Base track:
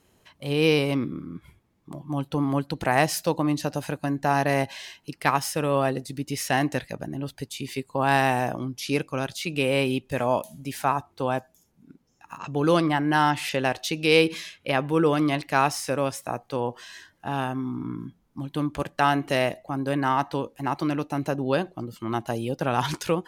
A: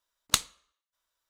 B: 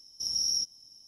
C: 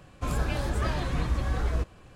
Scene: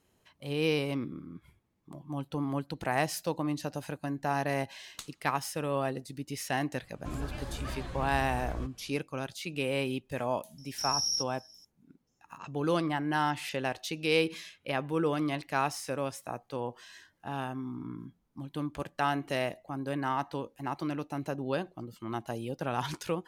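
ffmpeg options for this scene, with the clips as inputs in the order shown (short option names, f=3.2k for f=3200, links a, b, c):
-filter_complex "[0:a]volume=-8dB[a];[1:a]alimiter=limit=-11dB:level=0:latency=1:release=10,atrim=end=1.29,asetpts=PTS-STARTPTS,volume=-14.5dB,afade=t=in:d=0.004:c=hsin,afade=t=out:st=1.286:d=0.004:c=hsin,adelay=205065S[b];[3:a]atrim=end=2.15,asetpts=PTS-STARTPTS,volume=-10dB,afade=t=in:d=0.004:c=hsin,afade=t=out:st=2.146:d=0.004:c=hsin,adelay=6830[c];[2:a]atrim=end=1.07,asetpts=PTS-STARTPTS,volume=-2dB,afade=t=in:d=0.004:c=hsin,afade=t=out:st=1.066:d=0.004:c=hsin,adelay=466578S[d];[a][b][c][d]amix=inputs=4:normalize=0"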